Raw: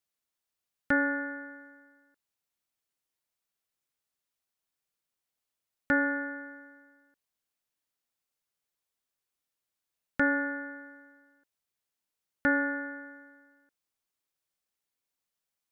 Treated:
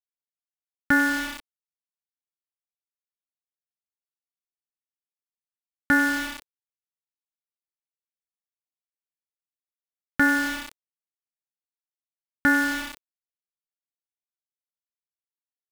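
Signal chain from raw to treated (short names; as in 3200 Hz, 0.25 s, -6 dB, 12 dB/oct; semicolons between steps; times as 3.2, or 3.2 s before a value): sample gate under -34 dBFS; bell 530 Hz -13.5 dB 0.34 oct; gain +7 dB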